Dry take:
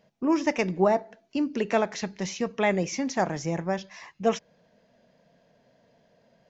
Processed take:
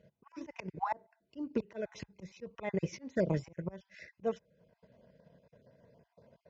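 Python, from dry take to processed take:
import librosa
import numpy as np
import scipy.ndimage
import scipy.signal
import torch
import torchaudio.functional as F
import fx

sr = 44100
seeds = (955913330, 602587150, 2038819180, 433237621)

y = fx.spec_dropout(x, sr, seeds[0], share_pct=25)
y = fx.low_shelf(y, sr, hz=340.0, db=9.5)
y = fx.auto_swell(y, sr, attack_ms=370.0)
y = fx.lowpass(y, sr, hz=3100.0, slope=6)
y = fx.transient(y, sr, attack_db=5, sustain_db=-6)
y = scipy.signal.sosfilt(scipy.signal.butter(4, 41.0, 'highpass', fs=sr, output='sos'), y)
y = y + 0.41 * np.pad(y, (int(2.0 * sr / 1000.0), 0))[:len(y)]
y = y * 10.0 ** (-4.5 / 20.0)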